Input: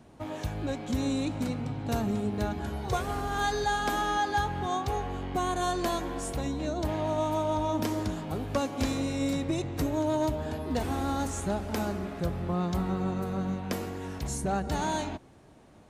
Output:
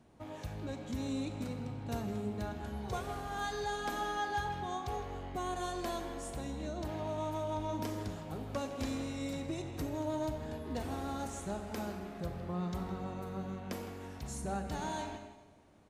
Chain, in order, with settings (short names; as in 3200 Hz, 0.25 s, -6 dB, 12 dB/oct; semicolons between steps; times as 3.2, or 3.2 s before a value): speakerphone echo 0.16 s, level -9 dB; Schroeder reverb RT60 1.2 s, combs from 30 ms, DRR 8.5 dB; gain -8.5 dB; MP3 160 kbps 44100 Hz